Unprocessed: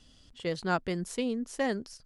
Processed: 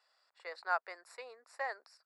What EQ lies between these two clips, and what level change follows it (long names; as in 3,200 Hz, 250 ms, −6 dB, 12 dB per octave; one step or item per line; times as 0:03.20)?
moving average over 14 samples
Bessel high-pass filter 1,100 Hz, order 6
+3.5 dB